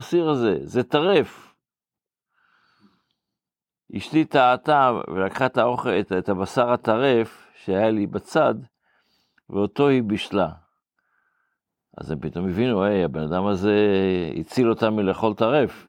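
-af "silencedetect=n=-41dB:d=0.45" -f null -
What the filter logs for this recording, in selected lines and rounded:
silence_start: 1.44
silence_end: 3.90 | silence_duration: 2.46
silence_start: 8.66
silence_end: 9.50 | silence_duration: 0.84
silence_start: 10.57
silence_end: 11.94 | silence_duration: 1.37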